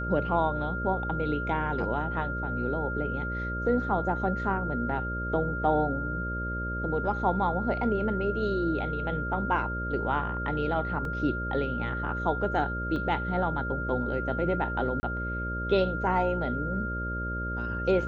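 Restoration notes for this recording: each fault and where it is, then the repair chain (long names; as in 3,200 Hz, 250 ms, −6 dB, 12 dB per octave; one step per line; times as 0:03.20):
mains buzz 60 Hz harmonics 10 −34 dBFS
whistle 1,400 Hz −33 dBFS
0:11.05: drop-out 2.1 ms
0:12.96: drop-out 2 ms
0:15.00–0:15.03: drop-out 30 ms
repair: hum removal 60 Hz, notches 10
notch filter 1,400 Hz, Q 30
repair the gap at 0:11.05, 2.1 ms
repair the gap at 0:12.96, 2 ms
repair the gap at 0:15.00, 30 ms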